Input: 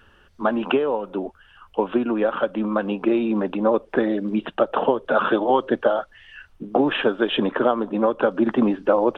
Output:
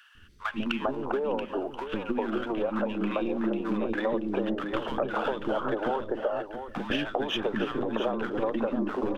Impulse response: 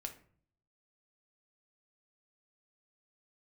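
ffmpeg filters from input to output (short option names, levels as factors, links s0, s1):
-filter_complex "[0:a]aeval=exprs='if(lt(val(0),0),0.708*val(0),val(0))':c=same,bandreject=f=60:t=h:w=6,bandreject=f=120:t=h:w=6,bandreject=f=180:t=h:w=6,bandreject=f=240:t=h:w=6,acrossover=split=320|1300[s0][s1][s2];[s0]adelay=150[s3];[s1]adelay=400[s4];[s3][s4][s2]amix=inputs=3:normalize=0,acompressor=threshold=0.0355:ratio=6,asplit=2[s5][s6];[s6]aecho=0:1:681:0.335[s7];[s5][s7]amix=inputs=2:normalize=0,volume=1.41"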